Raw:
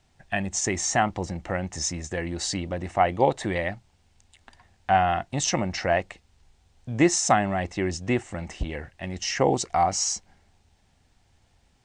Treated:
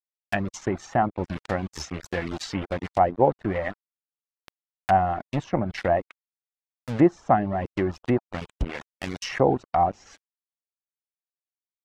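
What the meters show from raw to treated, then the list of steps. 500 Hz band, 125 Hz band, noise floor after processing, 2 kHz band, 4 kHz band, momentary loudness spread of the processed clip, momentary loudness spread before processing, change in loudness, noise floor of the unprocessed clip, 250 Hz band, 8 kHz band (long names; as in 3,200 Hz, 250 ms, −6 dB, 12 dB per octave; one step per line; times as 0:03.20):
+1.5 dB, +0.5 dB, below −85 dBFS, −3.5 dB, −8.0 dB, 12 LU, 12 LU, 0.0 dB, −65 dBFS, +1.5 dB, −17.0 dB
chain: centre clipping without the shift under −30 dBFS
reverb reduction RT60 0.52 s
treble cut that deepens with the level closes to 1,000 Hz, closed at −22.5 dBFS
level +2.5 dB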